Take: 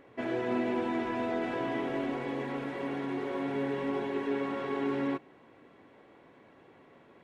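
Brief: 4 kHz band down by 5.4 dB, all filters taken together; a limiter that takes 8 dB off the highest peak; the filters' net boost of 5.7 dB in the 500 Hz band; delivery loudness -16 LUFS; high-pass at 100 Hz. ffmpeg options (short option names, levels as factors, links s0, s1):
-af "highpass=100,equalizer=f=500:t=o:g=7.5,equalizer=f=4000:t=o:g=-8,volume=6.68,alimiter=limit=0.422:level=0:latency=1"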